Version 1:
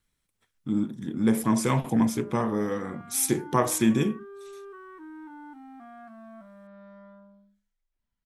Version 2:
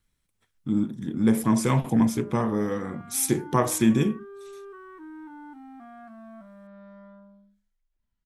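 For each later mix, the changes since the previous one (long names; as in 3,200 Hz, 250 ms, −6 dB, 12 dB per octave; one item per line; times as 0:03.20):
master: add low-shelf EQ 180 Hz +5 dB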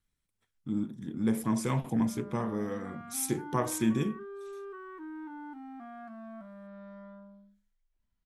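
speech −7.5 dB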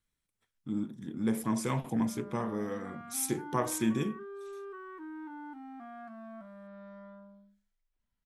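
master: add low-shelf EQ 180 Hz −5 dB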